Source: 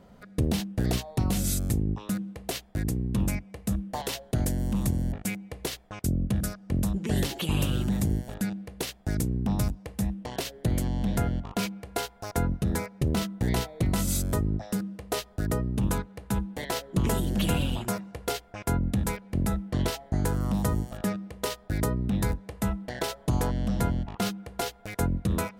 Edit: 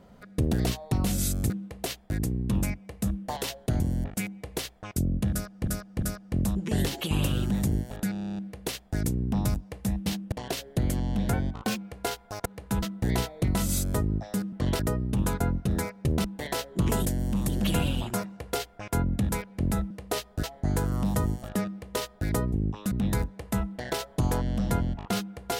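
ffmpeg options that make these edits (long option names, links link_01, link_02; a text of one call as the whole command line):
ffmpeg -i in.wav -filter_complex "[0:a]asplit=30[link_01][link_02][link_03][link_04][link_05][link_06][link_07][link_08][link_09][link_10][link_11][link_12][link_13][link_14][link_15][link_16][link_17][link_18][link_19][link_20][link_21][link_22][link_23][link_24][link_25][link_26][link_27][link_28][link_29][link_30];[link_01]atrim=end=0.532[link_31];[link_02]atrim=start=0.788:end=1.762[link_32];[link_03]atrim=start=2.148:end=4.452[link_33];[link_04]atrim=start=4.878:end=6.742[link_34];[link_05]atrim=start=6.388:end=6.742[link_35];[link_06]atrim=start=6.388:end=8.532[link_36];[link_07]atrim=start=8.498:end=8.532[link_37];[link_08]atrim=start=8.498:end=8.532[link_38];[link_09]atrim=start=8.498:end=8.532[link_39];[link_10]atrim=start=8.498:end=8.532[link_40];[link_11]atrim=start=8.498:end=8.532[link_41];[link_12]atrim=start=8.498:end=8.532[link_42];[link_13]atrim=start=8.498:end=8.532[link_43];[link_14]atrim=start=8.498:end=10.202[link_44];[link_15]atrim=start=0.528:end=0.792[link_45];[link_16]atrim=start=10.198:end=11.214[link_46];[link_17]atrim=start=11.21:end=11.69,asetpts=PTS-STARTPTS,asetrate=47628,aresample=44100[link_47];[link_18]atrim=start=11.686:end=12.372[link_48];[link_19]atrim=start=16.048:end=16.422[link_49];[link_20]atrim=start=13.208:end=14.912[link_50];[link_21]atrim=start=19.648:end=19.922[link_51];[link_22]atrim=start=15.438:end=16.052[link_52];[link_23]atrim=start=12.368:end=13.212[link_53];[link_24]atrim=start=16.418:end=17.232[link_54];[link_25]atrim=start=4.448:end=4.882[link_55];[link_26]atrim=start=17.228:end=19.652[link_56];[link_27]atrim=start=14.908:end=15.442[link_57];[link_28]atrim=start=19.918:end=22.012[link_58];[link_29]atrim=start=1.758:end=2.152[link_59];[link_30]atrim=start=22.008[link_60];[link_31][link_32]acrossfade=duration=0.004:curve1=hsin:curve2=hsin[link_61];[link_61][link_33]acrossfade=duration=0.004:curve1=hsin:curve2=hsin[link_62];[link_62][link_34]acrossfade=duration=0.004:curve1=hsin:curve2=hsin[link_63];[link_63][link_35]acrossfade=duration=0.004:curve1=hsin:curve2=hsin[link_64];[link_64][link_36]acrossfade=duration=0.004:curve1=hsin:curve2=hsin[link_65];[link_65][link_37]acrossfade=duration=0.004:curve1=hsin:curve2=hsin[link_66];[link_66][link_38]acrossfade=duration=0.004:curve1=hsin:curve2=hsin[link_67];[link_67][link_39]acrossfade=duration=0.004:curve1=hsin:curve2=hsin[link_68];[link_68][link_40]acrossfade=duration=0.004:curve1=hsin:curve2=hsin[link_69];[link_69][link_41]acrossfade=duration=0.004:curve1=hsin:curve2=hsin[link_70];[link_70][link_42]acrossfade=duration=0.004:curve1=hsin:curve2=hsin[link_71];[link_71][link_43]acrossfade=duration=0.004:curve1=hsin:curve2=hsin[link_72];[link_72][link_44]acrossfade=duration=0.004:curve1=hsin:curve2=hsin[link_73];[link_73][link_45]acrossfade=duration=0.004:curve1=hsin:curve2=hsin[link_74];[link_74][link_46]acrossfade=duration=0.004:curve1=hsin:curve2=hsin[link_75];[link_75][link_47]acrossfade=duration=0.004:curve1=hsin:curve2=hsin[link_76];[link_76][link_48]acrossfade=duration=0.004:curve1=hsin:curve2=hsin[link_77];[link_77][link_49]acrossfade=duration=0.004:curve1=hsin:curve2=hsin[link_78];[link_78][link_50]acrossfade=duration=0.004:curve1=hsin:curve2=hsin[link_79];[link_79][link_51]acrossfade=duration=0.004:curve1=hsin:curve2=hsin[link_80];[link_80][link_52]acrossfade=duration=0.004:curve1=hsin:curve2=hsin[link_81];[link_81][link_53]acrossfade=duration=0.004:curve1=hsin:curve2=hsin[link_82];[link_82][link_54]acrossfade=duration=0.004:curve1=hsin:curve2=hsin[link_83];[link_83][link_55]acrossfade=duration=0.004:curve1=hsin:curve2=hsin[link_84];[link_84][link_56]acrossfade=duration=0.004:curve1=hsin:curve2=hsin[link_85];[link_85][link_57]acrossfade=duration=0.004:curve1=hsin:curve2=hsin[link_86];[link_86][link_58]acrossfade=duration=0.004:curve1=hsin:curve2=hsin[link_87];[link_87][link_59]acrossfade=duration=0.004:curve1=hsin:curve2=hsin[link_88];[link_88][link_60]acrossfade=duration=0.004:curve1=hsin:curve2=hsin" out.wav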